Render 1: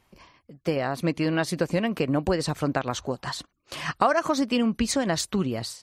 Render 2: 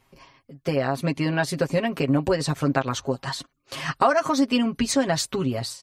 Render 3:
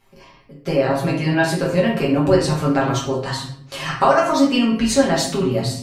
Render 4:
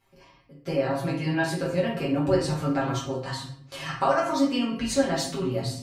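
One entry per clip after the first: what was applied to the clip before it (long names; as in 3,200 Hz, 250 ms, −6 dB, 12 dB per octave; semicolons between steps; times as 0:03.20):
comb filter 7.4 ms, depth 74%
rectangular room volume 110 cubic metres, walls mixed, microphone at 1.2 metres
notch comb filter 210 Hz; level −7 dB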